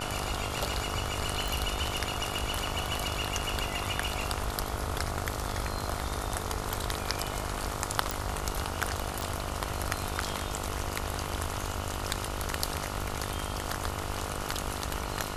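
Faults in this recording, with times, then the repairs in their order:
buzz 50 Hz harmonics 29 -38 dBFS
1.48 pop
8.11 pop
9.21 pop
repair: de-click; de-hum 50 Hz, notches 29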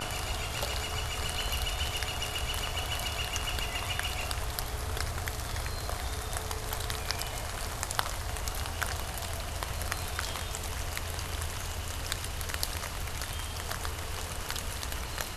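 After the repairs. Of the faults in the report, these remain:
none

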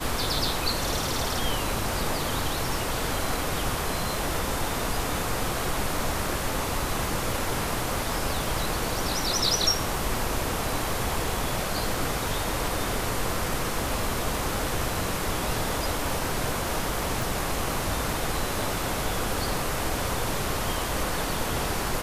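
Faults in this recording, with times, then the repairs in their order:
17.22 pop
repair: de-click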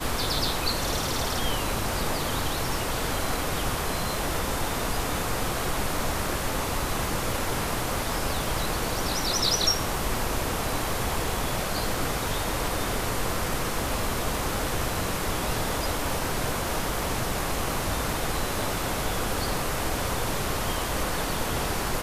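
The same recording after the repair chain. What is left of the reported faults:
none

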